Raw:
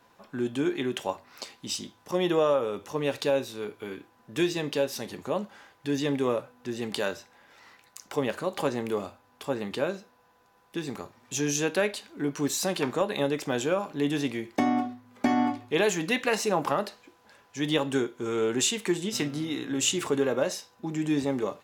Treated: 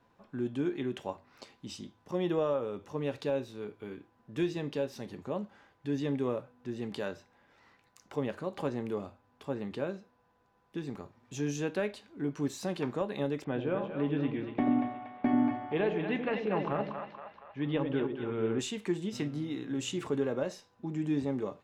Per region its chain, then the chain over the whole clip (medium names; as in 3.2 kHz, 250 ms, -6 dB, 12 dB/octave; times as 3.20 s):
13.44–18.59 s: low-pass 3.2 kHz 24 dB/octave + two-band feedback delay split 610 Hz, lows 88 ms, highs 236 ms, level -5.5 dB
whole clip: low-pass 3.2 kHz 6 dB/octave; bass shelf 300 Hz +8.5 dB; trim -8.5 dB